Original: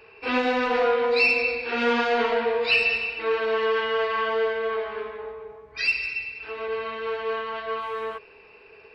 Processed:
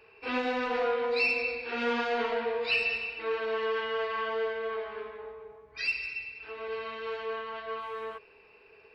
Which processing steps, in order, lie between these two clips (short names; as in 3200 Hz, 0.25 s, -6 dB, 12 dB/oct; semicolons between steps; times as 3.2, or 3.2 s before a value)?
6.66–7.26 high shelf 5300 Hz +11 dB; gain -7 dB